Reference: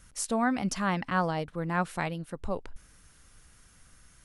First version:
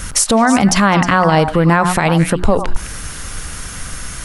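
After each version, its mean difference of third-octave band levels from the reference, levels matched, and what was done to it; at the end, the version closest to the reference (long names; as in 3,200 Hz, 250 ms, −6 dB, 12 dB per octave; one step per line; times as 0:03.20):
8.0 dB: mains-hum notches 60/120/180/240/300/360 Hz
downward compressor 5 to 1, threshold −37 dBFS, peak gain reduction 13.5 dB
on a send: echo through a band-pass that steps 104 ms, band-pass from 970 Hz, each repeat 1.4 octaves, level −7 dB
on the sum: boost into a limiter +32.5 dB
level −2 dB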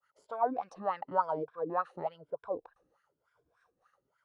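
11.0 dB: rippled gain that drifts along the octave scale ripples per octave 1.7, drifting +1 Hz, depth 10 dB
downward expander −50 dBFS
octave-band graphic EQ 125/250/500/1,000/2,000/4,000 Hz +7/−9/+10/+4/−4/+5 dB
LFO wah 3.4 Hz 280–1,700 Hz, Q 5
level +1 dB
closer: first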